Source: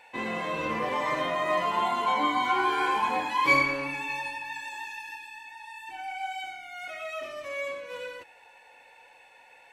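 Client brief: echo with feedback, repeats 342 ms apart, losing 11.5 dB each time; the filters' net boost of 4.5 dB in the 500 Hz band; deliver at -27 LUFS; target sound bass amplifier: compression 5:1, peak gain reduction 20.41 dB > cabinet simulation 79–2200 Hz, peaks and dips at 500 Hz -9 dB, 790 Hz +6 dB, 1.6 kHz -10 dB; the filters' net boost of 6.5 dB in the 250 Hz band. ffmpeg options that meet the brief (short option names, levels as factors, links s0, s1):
-af "equalizer=f=250:t=o:g=6,equalizer=f=500:t=o:g=8,aecho=1:1:342|684|1026:0.266|0.0718|0.0194,acompressor=threshold=0.0126:ratio=5,highpass=f=79:w=0.5412,highpass=f=79:w=1.3066,equalizer=f=500:t=q:w=4:g=-9,equalizer=f=790:t=q:w=4:g=6,equalizer=f=1600:t=q:w=4:g=-10,lowpass=f=2200:w=0.5412,lowpass=f=2200:w=1.3066,volume=4.47"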